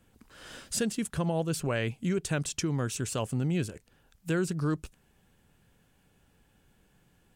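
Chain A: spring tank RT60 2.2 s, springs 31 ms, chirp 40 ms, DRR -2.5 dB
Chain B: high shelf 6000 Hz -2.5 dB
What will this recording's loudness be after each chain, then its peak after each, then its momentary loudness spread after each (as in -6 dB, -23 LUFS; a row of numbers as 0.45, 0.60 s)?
-27.0, -31.5 LUFS; -12.0, -16.5 dBFS; 14, 8 LU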